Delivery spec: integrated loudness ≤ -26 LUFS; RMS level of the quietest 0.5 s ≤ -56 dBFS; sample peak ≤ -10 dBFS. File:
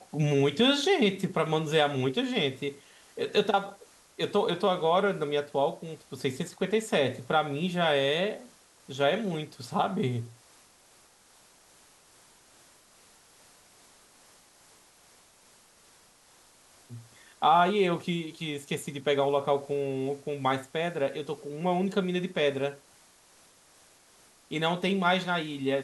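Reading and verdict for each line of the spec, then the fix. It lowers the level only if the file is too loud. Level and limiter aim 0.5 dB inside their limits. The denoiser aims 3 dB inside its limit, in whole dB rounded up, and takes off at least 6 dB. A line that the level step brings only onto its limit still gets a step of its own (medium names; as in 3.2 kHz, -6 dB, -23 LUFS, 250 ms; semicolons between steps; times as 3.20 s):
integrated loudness -28.0 LUFS: pass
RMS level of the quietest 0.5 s -60 dBFS: pass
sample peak -11.5 dBFS: pass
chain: none needed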